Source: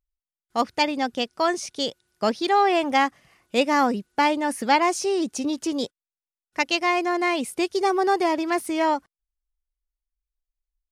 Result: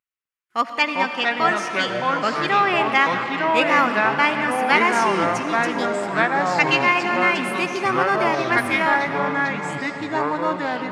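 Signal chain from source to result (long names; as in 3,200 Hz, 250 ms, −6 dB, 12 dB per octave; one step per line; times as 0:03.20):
high-pass filter 150 Hz
flat-topped bell 1,800 Hz +11 dB
convolution reverb RT60 4.0 s, pre-delay 40 ms, DRR 7 dB
delay with pitch and tempo change per echo 254 ms, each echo −4 semitones, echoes 3
level −4 dB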